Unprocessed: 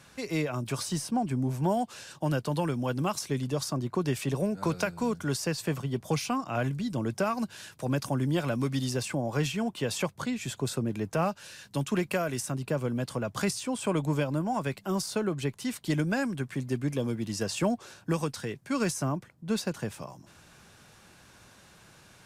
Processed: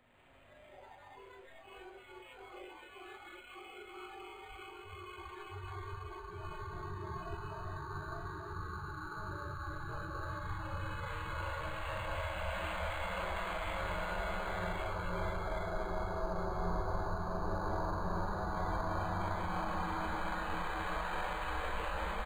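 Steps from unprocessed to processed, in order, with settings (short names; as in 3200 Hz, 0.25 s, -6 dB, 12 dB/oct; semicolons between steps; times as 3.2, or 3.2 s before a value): nonlinear frequency compression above 3500 Hz 4:1; spectral gate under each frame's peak -30 dB weak; low shelf 200 Hz +11 dB; auto swell 0.185 s; limiter -45.5 dBFS, peak gain reduction 11 dB; Paulstretch 34×, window 0.25 s, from 0.92; early reflections 41 ms -4.5 dB, 63 ms -4.5 dB; reverb RT60 1.8 s, pre-delay 0.1 s, DRR -4.5 dB; spectral noise reduction 17 dB; decimation joined by straight lines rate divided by 8×; gain +11.5 dB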